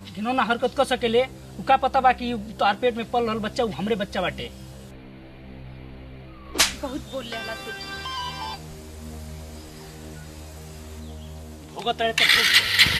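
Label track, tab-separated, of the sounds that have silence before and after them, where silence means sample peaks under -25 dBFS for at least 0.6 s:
6.550000	8.550000	sound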